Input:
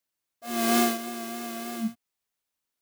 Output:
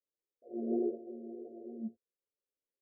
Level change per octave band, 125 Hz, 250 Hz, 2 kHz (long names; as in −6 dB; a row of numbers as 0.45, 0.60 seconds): can't be measured, −9.0 dB, below −40 dB